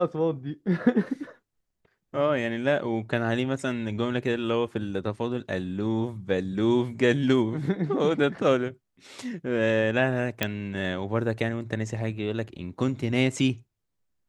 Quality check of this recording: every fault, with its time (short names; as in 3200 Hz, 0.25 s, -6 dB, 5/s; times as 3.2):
10.43 pop -8 dBFS